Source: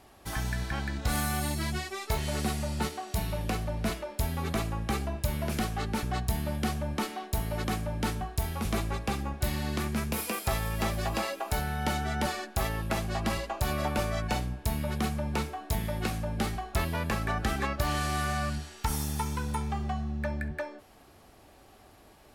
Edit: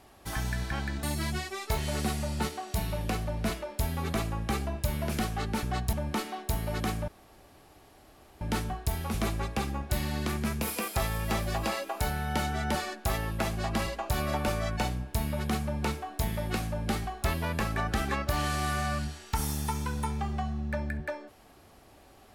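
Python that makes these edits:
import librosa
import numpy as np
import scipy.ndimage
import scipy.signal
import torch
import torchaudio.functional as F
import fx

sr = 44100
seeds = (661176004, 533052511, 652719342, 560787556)

y = fx.edit(x, sr, fx.cut(start_s=1.03, length_s=0.4),
    fx.cut(start_s=6.33, length_s=0.44),
    fx.insert_room_tone(at_s=7.92, length_s=1.33), tone=tone)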